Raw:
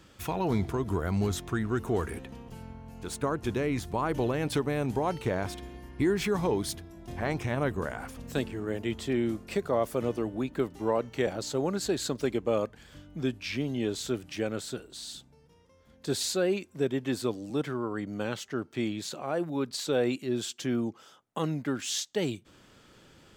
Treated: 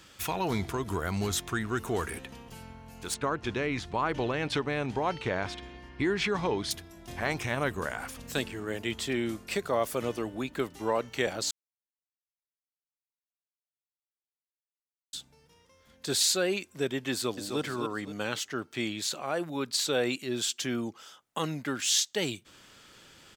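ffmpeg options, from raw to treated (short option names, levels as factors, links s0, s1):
-filter_complex "[0:a]asettb=1/sr,asplit=3[s0][s1][s2];[s0]atrim=end=3.144[s3];[s1]atrim=start=3.14:end=6.71,asetpts=PTS-STARTPTS,afade=t=in:d=0.004:c=qsin,afade=t=out:st=3.566:d=0.004:c=qsin,lowpass=4300[s4];[s2]atrim=start=6.706[s5];[s3][s4]acrossfade=d=0.004:c1=hsin:c2=qsin[s6];[s6][s5]acrossfade=d=0.004:c1=qsin:c2=hsin,asplit=2[s7][s8];[s8]afade=t=in:st=17.11:d=0.01,afade=t=out:st=17.6:d=0.01,aecho=0:1:260|520|780|1040:0.501187|0.175416|0.0613954|0.0214884[s9];[s7][s9]amix=inputs=2:normalize=0,asplit=3[s10][s11][s12];[s10]atrim=end=11.51,asetpts=PTS-STARTPTS,afade=t=out:st=11.506:d=0.004:c=hsin[s13];[s11]atrim=start=11.51:end=15.13,asetpts=PTS-STARTPTS,volume=0[s14];[s12]atrim=start=15.13,asetpts=PTS-STARTPTS,afade=t=in:d=0.004:c=hsin[s15];[s13][s14][s15]concat=n=3:v=0:a=1,tiltshelf=f=970:g=-5.5,volume=1.19"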